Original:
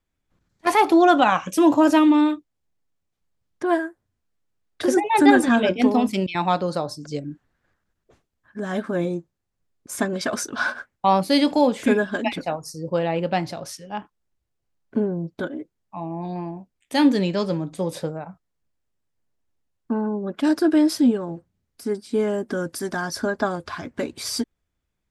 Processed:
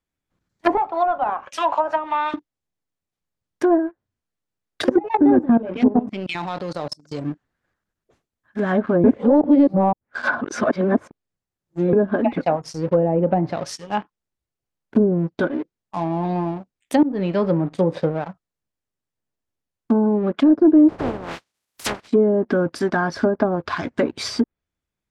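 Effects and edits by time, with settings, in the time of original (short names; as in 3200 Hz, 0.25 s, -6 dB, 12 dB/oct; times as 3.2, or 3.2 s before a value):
0.77–2.34 HPF 750 Hz 24 dB/oct
4.84–7.21 level quantiser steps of 17 dB
9.04–11.93 reverse
17.03–17.85 fade in equal-power, from -21 dB
20.88–22.07 spectral contrast lowered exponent 0.11
whole clip: sample leveller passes 2; treble ducked by the level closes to 570 Hz, closed at -12 dBFS; low shelf 60 Hz -8 dB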